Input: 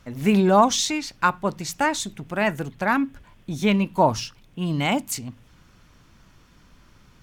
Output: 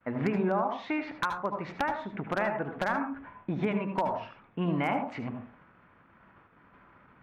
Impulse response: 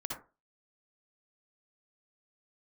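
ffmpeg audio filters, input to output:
-filter_complex "[0:a]lowpass=f=2k:w=0.5412,lowpass=f=2k:w=1.3066,agate=range=-33dB:threshold=-47dB:ratio=3:detection=peak,highpass=f=500:p=1,acompressor=threshold=-34dB:ratio=16,aeval=exprs='0.0473*(abs(mod(val(0)/0.0473+3,4)-2)-1)':c=same,asplit=2[a][b];[1:a]atrim=start_sample=2205,asetrate=34398,aresample=44100[c];[b][c]afir=irnorm=-1:irlink=0,volume=-3dB[d];[a][d]amix=inputs=2:normalize=0,volume=4dB"

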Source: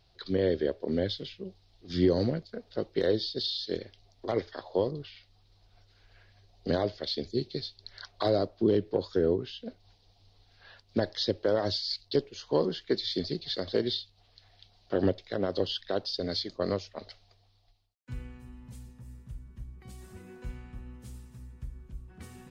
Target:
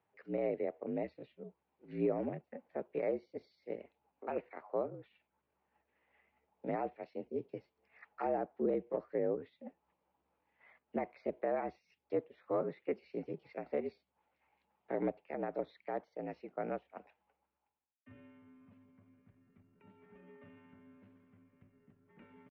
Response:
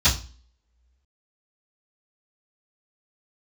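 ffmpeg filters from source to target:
-af "asetrate=55563,aresample=44100,atempo=0.793701,highpass=f=220:t=q:w=0.5412,highpass=f=220:t=q:w=1.307,lowpass=f=2.6k:t=q:w=0.5176,lowpass=f=2.6k:t=q:w=0.7071,lowpass=f=2.6k:t=q:w=1.932,afreqshift=-54,volume=-8dB"

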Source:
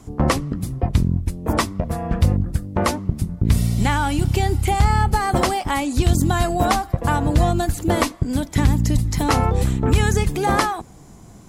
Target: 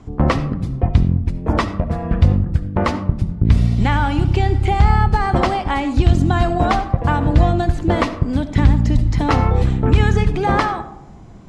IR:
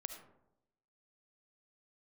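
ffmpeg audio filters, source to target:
-filter_complex "[0:a]lowpass=3.6k,asplit=2[a][b];[1:a]atrim=start_sample=2205,lowshelf=f=140:g=6[c];[b][c]afir=irnorm=-1:irlink=0,volume=4.5dB[d];[a][d]amix=inputs=2:normalize=0,volume=-5dB"

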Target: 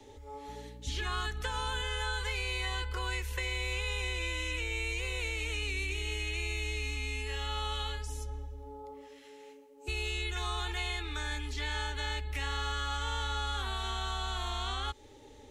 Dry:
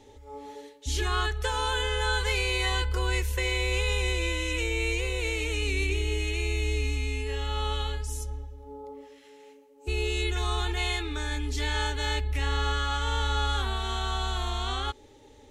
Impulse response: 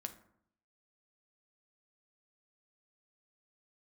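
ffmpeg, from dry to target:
-filter_complex "[0:a]acrossover=split=130|690|5000[a][b][c][d];[a]acompressor=threshold=-37dB:ratio=4[e];[b]acompressor=threshold=-49dB:ratio=4[f];[c]acompressor=threshold=-35dB:ratio=4[g];[d]acompressor=threshold=-47dB:ratio=4[h];[e][f][g][h]amix=inputs=4:normalize=0,acrossover=split=260|610|3900[i][j][k][l];[l]alimiter=level_in=14dB:limit=-24dB:level=0:latency=1:release=275,volume=-14dB[m];[i][j][k][m]amix=inputs=4:normalize=0,asettb=1/sr,asplit=3[n][o][p];[n]atrim=end=0.484[q];[o]atrim=start=0.48:end=1.82,asetpts=PTS-STARTPTS,afade=t=in:d=0.004:c=qsin,afade=t=out:st=1.336:d=0.004:c=qsin,aeval=exprs='val(0)+0.00447*(sin(2*PI*60*n/s)+sin(2*PI*2*60*n/s)/2+sin(2*PI*3*60*n/s)/3+sin(2*PI*4*60*n/s)/4+sin(2*PI*5*60*n/s)/5)':c=same[r];[p]atrim=start=1.816[s];[q][r]acrossfade=d=0.004:c1=hsin:c2=qsin[t];[t][s]acrossfade=d=0.004:c1=qsin:c2=hsin"

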